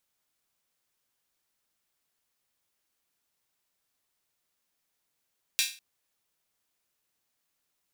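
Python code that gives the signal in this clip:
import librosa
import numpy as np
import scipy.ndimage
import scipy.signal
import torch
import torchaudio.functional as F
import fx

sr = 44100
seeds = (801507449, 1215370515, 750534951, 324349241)

y = fx.drum_hat_open(sr, length_s=0.2, from_hz=2800.0, decay_s=0.35)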